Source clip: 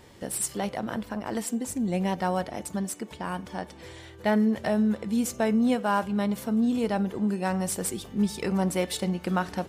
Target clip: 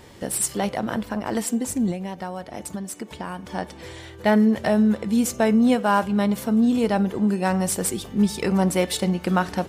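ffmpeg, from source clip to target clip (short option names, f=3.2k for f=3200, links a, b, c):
-filter_complex "[0:a]asettb=1/sr,asplit=3[a][b][c];[a]atrim=end=1.914[d];[b]atrim=start=1.91:end=3.49,asetpts=PTS-STARTPTS,afade=t=in:d=0.004:c=qsin,afade=t=out:st=1.576:d=0.004:c=qsin,acompressor=threshold=-34dB:ratio=5[e];[c]atrim=start=3.486[f];[d][e]acrossfade=d=0.004:c1=hsin:c2=qsin[g];[g][f]acrossfade=d=0.004:c1=qsin:c2=hsin,volume=5.5dB"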